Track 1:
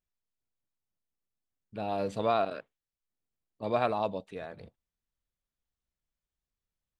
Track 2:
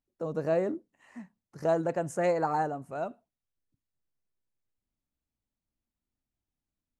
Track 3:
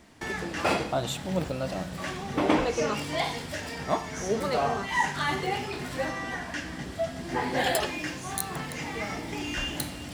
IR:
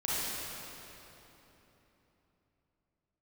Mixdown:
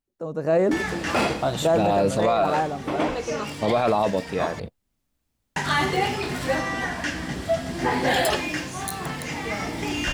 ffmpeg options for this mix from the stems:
-filter_complex "[0:a]agate=range=0.126:threshold=0.00398:ratio=16:detection=peak,acontrast=85,volume=1.26[s0];[1:a]volume=1.12[s1];[2:a]adelay=500,volume=0.531,asplit=3[s2][s3][s4];[s2]atrim=end=4.6,asetpts=PTS-STARTPTS,afade=t=out:st=4.596:d=0.004:c=hsin[s5];[s3]atrim=start=4.6:end=5.56,asetpts=PTS-STARTPTS,volume=0[s6];[s4]atrim=start=5.56,asetpts=PTS-STARTPTS,afade=t=in:d=0.004:c=hsin[s7];[s5][s6][s7]concat=n=3:v=0:a=1[s8];[s0][s1][s8]amix=inputs=3:normalize=0,dynaudnorm=f=380:g=3:m=3.98,alimiter=limit=0.251:level=0:latency=1:release=10"

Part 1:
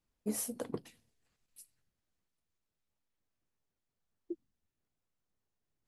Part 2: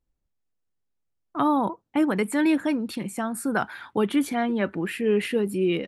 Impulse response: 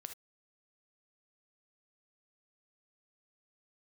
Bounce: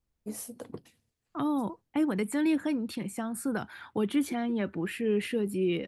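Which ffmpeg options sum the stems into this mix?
-filter_complex "[0:a]volume=0.708[s0];[1:a]volume=0.596[s1];[s0][s1]amix=inputs=2:normalize=0,acrossover=split=450|3000[s2][s3][s4];[s3]acompressor=threshold=0.0158:ratio=6[s5];[s2][s5][s4]amix=inputs=3:normalize=0,equalizer=f=89:t=o:w=1:g=5"

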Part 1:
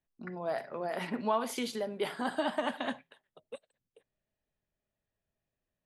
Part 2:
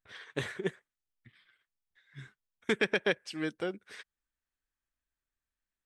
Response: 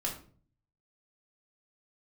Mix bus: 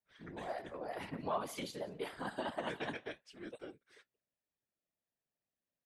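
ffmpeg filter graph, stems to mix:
-filter_complex "[0:a]highpass=130,volume=0.841,asplit=2[s0][s1];[s1]volume=0.0794[s2];[1:a]agate=range=0.0224:threshold=0.00158:ratio=3:detection=peak,flanger=delay=7.8:depth=7.3:regen=53:speed=0.53:shape=sinusoidal,volume=0.531[s3];[s2]aecho=0:1:179:1[s4];[s0][s3][s4]amix=inputs=3:normalize=0,afftfilt=real='hypot(re,im)*cos(2*PI*random(0))':imag='hypot(re,im)*sin(2*PI*random(1))':win_size=512:overlap=0.75"

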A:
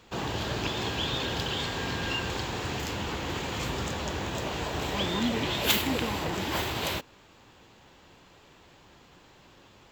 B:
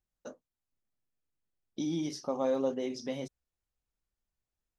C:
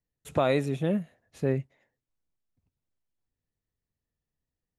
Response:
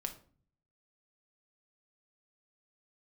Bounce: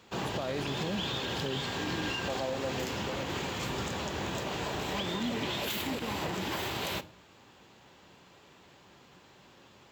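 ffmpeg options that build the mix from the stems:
-filter_complex "[0:a]volume=0.562,asplit=2[s0][s1];[s1]volume=0.631[s2];[1:a]equalizer=f=700:t=o:w=0.75:g=11,volume=0.473[s3];[2:a]volume=0.596[s4];[3:a]atrim=start_sample=2205[s5];[s2][s5]afir=irnorm=-1:irlink=0[s6];[s0][s3][s4][s6]amix=inputs=4:normalize=0,highpass=83,alimiter=limit=0.0631:level=0:latency=1:release=96"

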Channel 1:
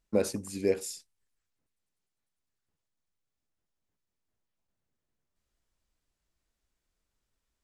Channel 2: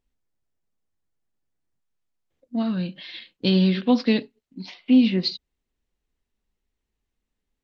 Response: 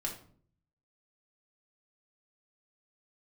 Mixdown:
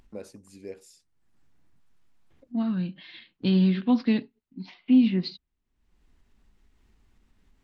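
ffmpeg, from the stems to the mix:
-filter_complex "[0:a]highshelf=f=8500:g=-7.5,volume=0.224[s0];[1:a]lowpass=f=1500:p=1,equalizer=f=520:w=1.8:g=-9.5,volume=0.891[s1];[s0][s1]amix=inputs=2:normalize=0,acompressor=mode=upward:threshold=0.00631:ratio=2.5"

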